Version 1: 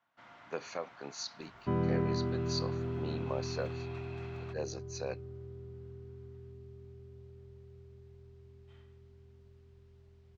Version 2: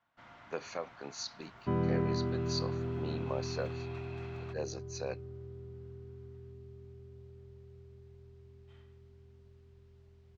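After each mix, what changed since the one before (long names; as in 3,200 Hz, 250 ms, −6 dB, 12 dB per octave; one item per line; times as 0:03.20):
first sound: remove high-pass filter 190 Hz 6 dB per octave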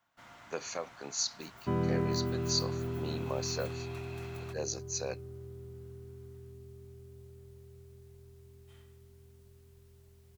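master: remove high-frequency loss of the air 170 metres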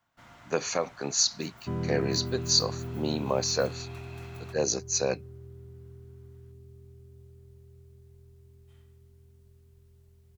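speech +8.5 dB
second sound −5.5 dB
master: add low-shelf EQ 220 Hz +8 dB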